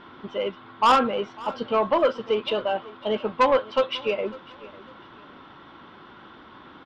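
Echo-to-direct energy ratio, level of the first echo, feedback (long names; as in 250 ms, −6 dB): −20.0 dB, −20.5 dB, 32%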